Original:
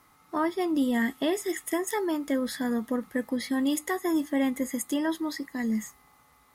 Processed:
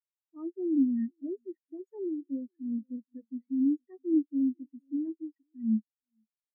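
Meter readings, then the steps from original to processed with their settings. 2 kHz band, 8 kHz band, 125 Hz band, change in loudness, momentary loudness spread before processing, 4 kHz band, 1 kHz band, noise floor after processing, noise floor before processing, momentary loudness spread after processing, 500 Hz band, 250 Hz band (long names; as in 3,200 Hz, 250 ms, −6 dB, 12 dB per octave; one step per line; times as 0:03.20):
below −35 dB, below −40 dB, can't be measured, −3.0 dB, 5 LU, below −40 dB, below −30 dB, below −85 dBFS, −61 dBFS, 15 LU, −9.5 dB, −2.0 dB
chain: single-tap delay 471 ms −14 dB
leveller curve on the samples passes 2
every bin expanded away from the loudest bin 4 to 1
level −2 dB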